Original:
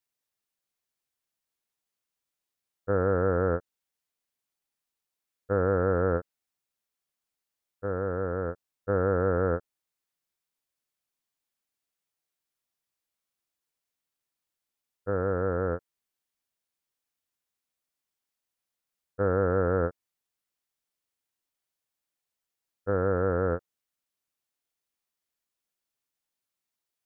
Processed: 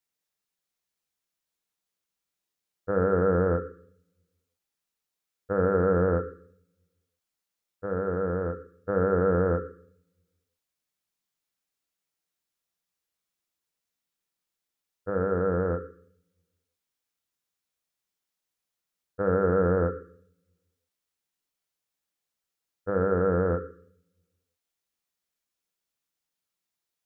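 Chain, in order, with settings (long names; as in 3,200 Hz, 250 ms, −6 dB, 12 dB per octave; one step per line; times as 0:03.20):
on a send: elliptic band-stop filter 520–1,200 Hz + convolution reverb RT60 0.55 s, pre-delay 3 ms, DRR 7.5 dB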